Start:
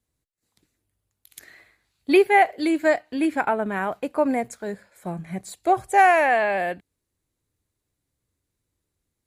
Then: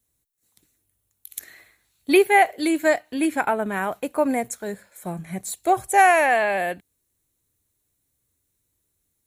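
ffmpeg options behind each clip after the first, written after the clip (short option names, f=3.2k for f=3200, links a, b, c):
-af "aemphasis=mode=production:type=50kf,bandreject=f=4.8k:w=8.7"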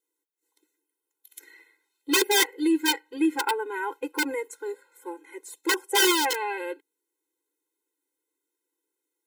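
-af "highshelf=f=3.3k:g=-8.5,aeval=exprs='(mod(3.98*val(0)+1,2)-1)/3.98':c=same,afftfilt=real='re*eq(mod(floor(b*sr/1024/270),2),1)':imag='im*eq(mod(floor(b*sr/1024/270),2),1)':win_size=1024:overlap=0.75"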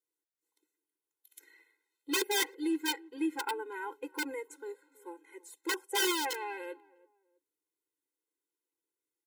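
-filter_complex "[0:a]asplit=2[a][b];[b]adelay=326,lowpass=f=950:p=1,volume=-21.5dB,asplit=2[c][d];[d]adelay=326,lowpass=f=950:p=1,volume=0.34[e];[a][c][e]amix=inputs=3:normalize=0,volume=-9dB"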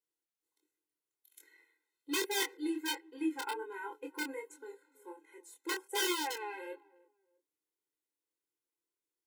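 -af "flanger=delay=22.5:depth=4:speed=1.3"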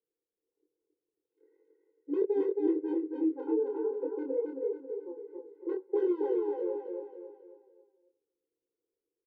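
-af "lowpass=f=460:t=q:w=4.9,aecho=1:1:272|544|816|1088|1360:0.708|0.297|0.125|0.0525|0.022"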